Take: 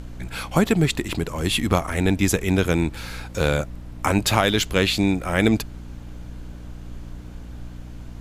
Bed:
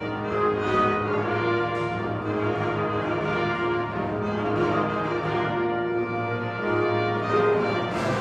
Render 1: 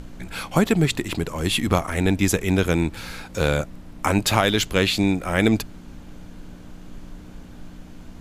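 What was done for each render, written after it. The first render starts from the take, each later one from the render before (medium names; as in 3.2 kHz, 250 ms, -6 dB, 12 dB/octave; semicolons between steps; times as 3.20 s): de-hum 60 Hz, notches 2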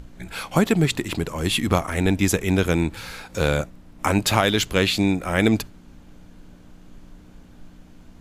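noise print and reduce 6 dB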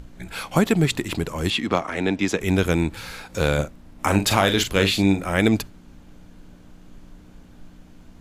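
1.50–2.40 s: three-band isolator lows -15 dB, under 180 Hz, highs -20 dB, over 6.2 kHz; 3.54–5.25 s: doubling 41 ms -8 dB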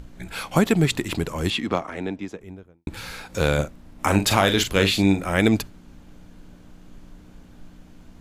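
1.28–2.87 s: studio fade out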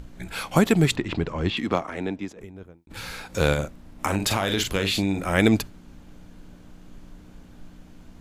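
0.96–1.57 s: distance through air 180 m; 2.31–2.96 s: compressor with a negative ratio -43 dBFS; 3.53–5.22 s: compression, threshold -19 dBFS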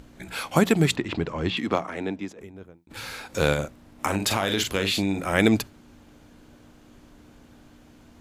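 high-pass 100 Hz 6 dB/octave; hum notches 60/120/180 Hz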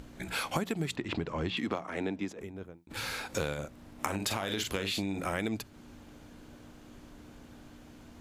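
compression 10:1, threshold -29 dBFS, peak gain reduction 16 dB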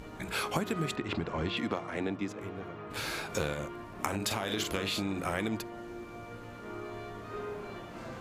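add bed -18.5 dB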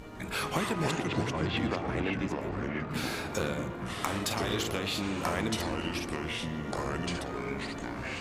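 on a send: filtered feedback delay 117 ms, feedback 77%, low-pass 4.4 kHz, level -14.5 dB; on the sum: ever faster or slower copies 155 ms, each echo -4 st, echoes 2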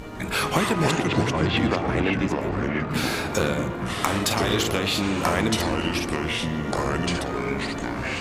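trim +8.5 dB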